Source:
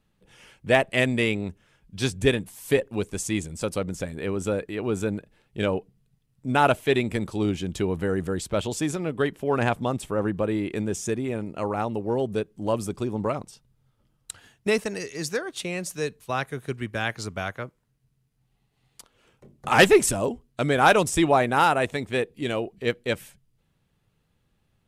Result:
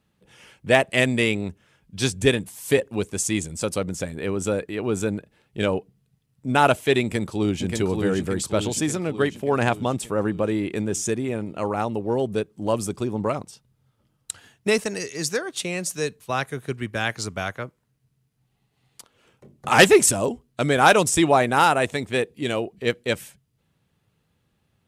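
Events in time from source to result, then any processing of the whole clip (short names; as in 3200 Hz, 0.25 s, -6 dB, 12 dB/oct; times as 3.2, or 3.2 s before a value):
7.02–7.63 echo throw 0.58 s, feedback 60%, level -4 dB
whole clip: HPF 63 Hz; dynamic EQ 7500 Hz, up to +5 dB, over -46 dBFS, Q 0.72; gain +2 dB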